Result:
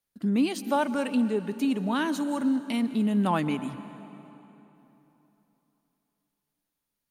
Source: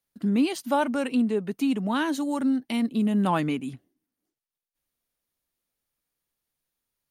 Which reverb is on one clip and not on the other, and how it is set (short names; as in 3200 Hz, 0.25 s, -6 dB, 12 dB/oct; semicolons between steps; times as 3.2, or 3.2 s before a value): plate-style reverb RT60 3.4 s, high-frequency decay 0.75×, pre-delay 0.115 s, DRR 13 dB; gain -1.5 dB